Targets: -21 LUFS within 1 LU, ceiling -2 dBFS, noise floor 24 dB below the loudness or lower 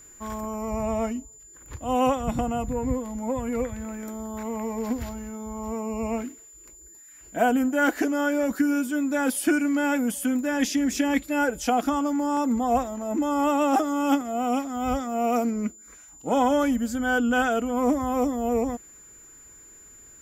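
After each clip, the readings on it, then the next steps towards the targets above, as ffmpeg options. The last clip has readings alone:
steady tone 7100 Hz; tone level -47 dBFS; loudness -25.5 LUFS; peak -9.5 dBFS; loudness target -21.0 LUFS
-> -af "bandreject=f=7.1k:w=30"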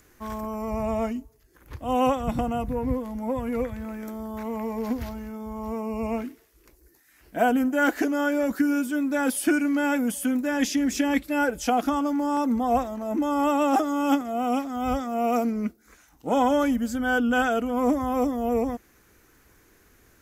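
steady tone none; loudness -25.5 LUFS; peak -9.5 dBFS; loudness target -21.0 LUFS
-> -af "volume=4.5dB"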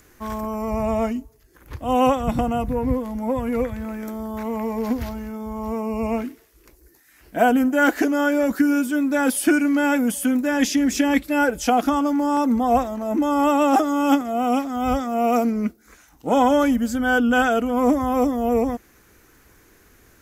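loudness -21.0 LUFS; peak -5.0 dBFS; noise floor -55 dBFS

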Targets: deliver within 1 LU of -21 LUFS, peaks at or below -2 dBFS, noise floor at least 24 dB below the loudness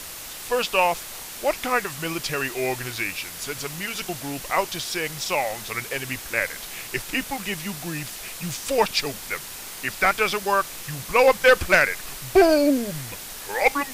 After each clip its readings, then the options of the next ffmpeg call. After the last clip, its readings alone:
noise floor -37 dBFS; noise floor target -48 dBFS; loudness -23.5 LUFS; peak -7.0 dBFS; loudness target -21.0 LUFS
-> -af "afftdn=nr=11:nf=-37"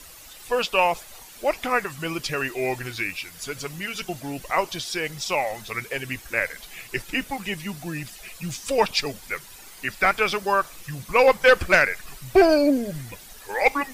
noise floor -45 dBFS; noise floor target -48 dBFS
-> -af "afftdn=nr=6:nf=-45"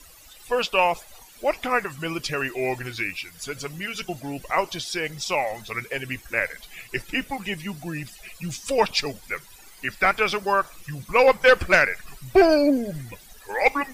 noise floor -49 dBFS; loudness -24.0 LUFS; peak -7.0 dBFS; loudness target -21.0 LUFS
-> -af "volume=3dB"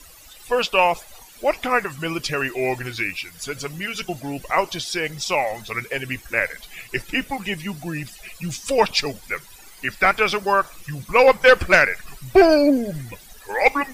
loudness -21.0 LUFS; peak -4.0 dBFS; noise floor -46 dBFS

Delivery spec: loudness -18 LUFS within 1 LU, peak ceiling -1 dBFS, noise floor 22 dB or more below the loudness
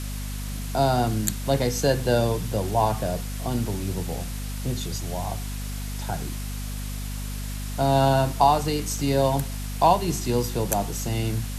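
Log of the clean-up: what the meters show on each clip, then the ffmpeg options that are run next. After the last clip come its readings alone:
hum 50 Hz; harmonics up to 250 Hz; hum level -29 dBFS; noise floor -31 dBFS; noise floor target -48 dBFS; loudness -25.5 LUFS; peak -5.0 dBFS; loudness target -18.0 LUFS
-> -af "bandreject=f=50:t=h:w=6,bandreject=f=100:t=h:w=6,bandreject=f=150:t=h:w=6,bandreject=f=200:t=h:w=6,bandreject=f=250:t=h:w=6"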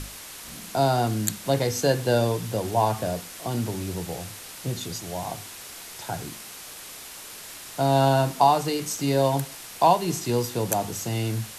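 hum none; noise floor -41 dBFS; noise floor target -47 dBFS
-> -af "afftdn=nr=6:nf=-41"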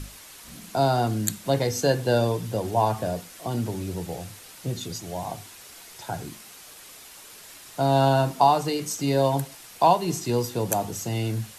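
noise floor -46 dBFS; noise floor target -47 dBFS
-> -af "afftdn=nr=6:nf=-46"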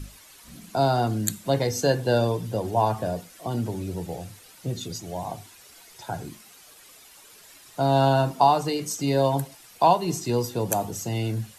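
noise floor -51 dBFS; loudness -25.0 LUFS; peak -5.5 dBFS; loudness target -18.0 LUFS
-> -af "volume=7dB,alimiter=limit=-1dB:level=0:latency=1"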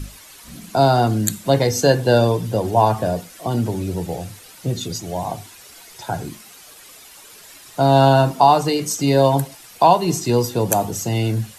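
loudness -18.5 LUFS; peak -1.0 dBFS; noise floor -44 dBFS

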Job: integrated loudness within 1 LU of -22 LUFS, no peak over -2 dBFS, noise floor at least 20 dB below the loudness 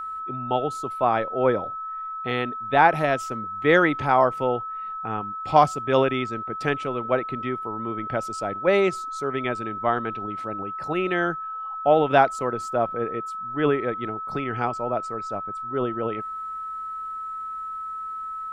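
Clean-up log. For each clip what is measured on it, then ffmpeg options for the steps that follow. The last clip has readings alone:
steady tone 1300 Hz; tone level -30 dBFS; loudness -25.0 LUFS; peak -2.5 dBFS; loudness target -22.0 LUFS
-> -af "bandreject=f=1.3k:w=30"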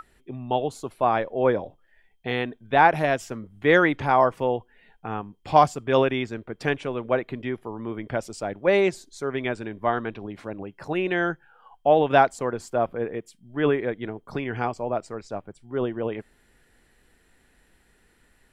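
steady tone none; loudness -24.5 LUFS; peak -2.5 dBFS; loudness target -22.0 LUFS
-> -af "volume=2.5dB,alimiter=limit=-2dB:level=0:latency=1"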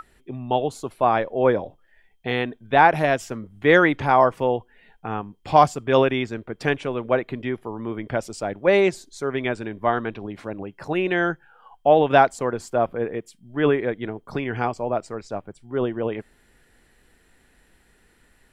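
loudness -22.5 LUFS; peak -2.0 dBFS; noise floor -60 dBFS

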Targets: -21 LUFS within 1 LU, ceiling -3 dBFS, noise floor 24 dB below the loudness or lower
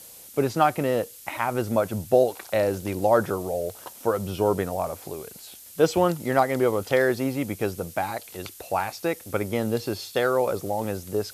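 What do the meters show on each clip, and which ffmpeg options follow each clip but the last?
noise floor -46 dBFS; noise floor target -50 dBFS; loudness -25.5 LUFS; peak -6.0 dBFS; loudness target -21.0 LUFS
-> -af "afftdn=nr=6:nf=-46"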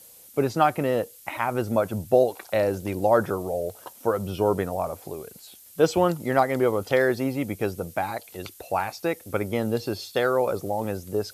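noise floor -50 dBFS; loudness -25.5 LUFS; peak -6.0 dBFS; loudness target -21.0 LUFS
-> -af "volume=4.5dB,alimiter=limit=-3dB:level=0:latency=1"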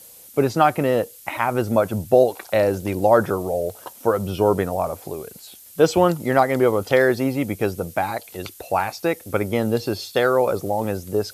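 loudness -21.0 LUFS; peak -3.0 dBFS; noise floor -45 dBFS

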